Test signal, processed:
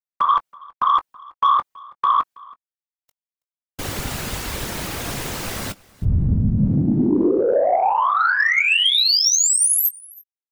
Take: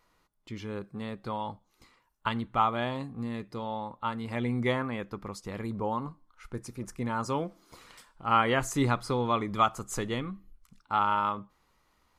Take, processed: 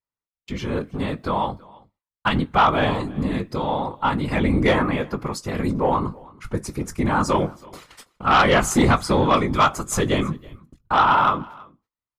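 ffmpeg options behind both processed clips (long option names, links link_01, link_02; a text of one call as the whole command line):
ffmpeg -i in.wav -filter_complex "[0:a]afftfilt=real='hypot(re,im)*cos(2*PI*random(0))':imag='hypot(re,im)*sin(2*PI*random(1))':win_size=512:overlap=0.75,agate=range=-40dB:threshold=-58dB:ratio=16:detection=peak,acontrast=63,aeval=exprs='0.316*sin(PI/2*2.24*val(0)/0.316)':channel_layout=same,asplit=2[link_01][link_02];[link_02]adelay=20,volume=-14dB[link_03];[link_01][link_03]amix=inputs=2:normalize=0,asplit=2[link_04][link_05];[link_05]aecho=0:1:326:0.0631[link_06];[link_04][link_06]amix=inputs=2:normalize=0" out.wav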